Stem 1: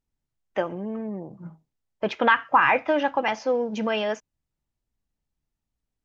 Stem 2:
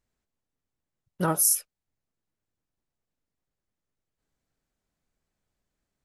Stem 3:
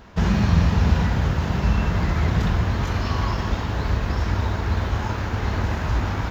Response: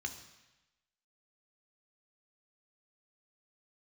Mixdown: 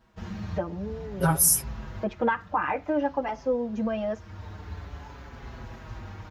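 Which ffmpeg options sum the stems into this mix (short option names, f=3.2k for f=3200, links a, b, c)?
-filter_complex "[0:a]equalizer=f=3.4k:t=o:w=2.9:g=-14.5,volume=1.5dB,asplit=2[a][b];[1:a]aecho=1:1:7.4:0.97,volume=2dB[c];[2:a]volume=-14dB[d];[b]apad=whole_len=278207[e];[d][e]sidechaincompress=threshold=-30dB:ratio=10:attack=7:release=716[f];[a][c][f]amix=inputs=3:normalize=0,asplit=2[g][h];[h]adelay=5.8,afreqshift=-0.51[i];[g][i]amix=inputs=2:normalize=1"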